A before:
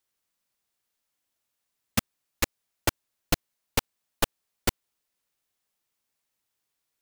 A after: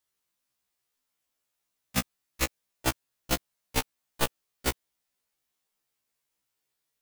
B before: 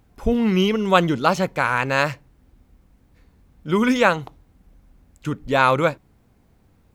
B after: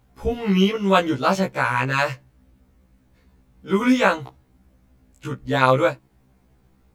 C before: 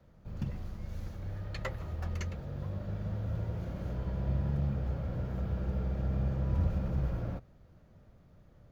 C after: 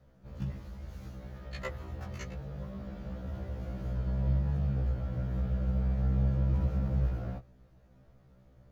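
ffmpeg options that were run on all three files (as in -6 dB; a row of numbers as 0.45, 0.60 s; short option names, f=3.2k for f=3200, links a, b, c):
-af "afftfilt=real='re*1.73*eq(mod(b,3),0)':imag='im*1.73*eq(mod(b,3),0)':win_size=2048:overlap=0.75,volume=1.5dB"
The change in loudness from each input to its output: -1.5, -0.5, +2.0 LU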